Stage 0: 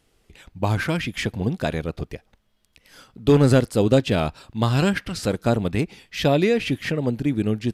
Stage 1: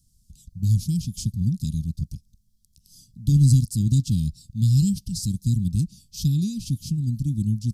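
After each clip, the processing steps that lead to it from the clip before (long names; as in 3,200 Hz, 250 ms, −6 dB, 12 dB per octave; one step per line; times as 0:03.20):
inverse Chebyshev band-stop filter 500–2,000 Hz, stop band 60 dB
level +4 dB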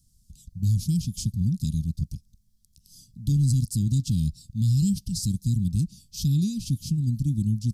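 brickwall limiter −16 dBFS, peak gain reduction 7.5 dB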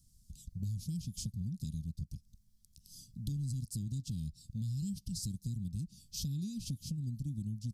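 downward compressor 4 to 1, threshold −35 dBFS, peak gain reduction 13.5 dB
level −2.5 dB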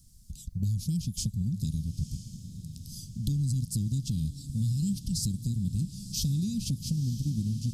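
feedback delay with all-pass diffusion 986 ms, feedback 56%, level −12 dB
level +8.5 dB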